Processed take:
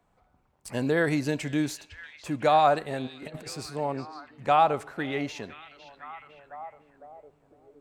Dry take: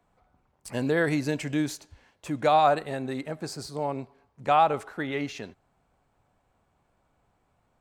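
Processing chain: 3.07–3.47 negative-ratio compressor -40 dBFS, ratio -0.5; on a send: delay with a stepping band-pass 0.506 s, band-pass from 3500 Hz, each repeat -0.7 oct, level -10.5 dB

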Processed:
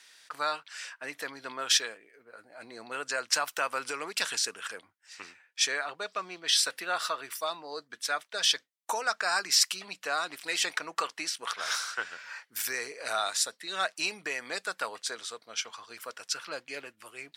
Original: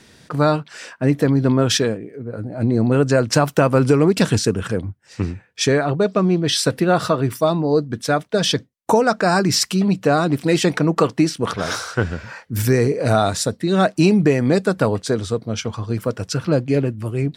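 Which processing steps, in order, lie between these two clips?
HPF 1400 Hz 12 dB/oct; gain -4 dB

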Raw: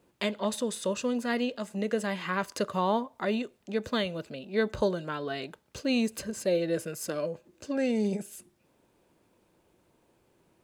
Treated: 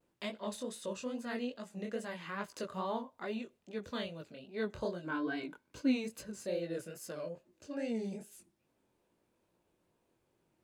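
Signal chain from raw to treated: 5.03–6.04 small resonant body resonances 290/990/1500/2200 Hz, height 15 dB -> 11 dB; chorus 2.4 Hz, delay 17 ms, depth 7.5 ms; vibrato 0.44 Hz 23 cents; gain -7 dB

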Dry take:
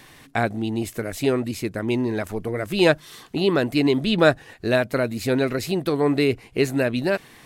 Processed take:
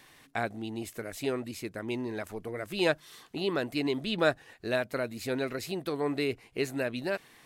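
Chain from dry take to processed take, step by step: low shelf 290 Hz -6.5 dB; gain -8 dB

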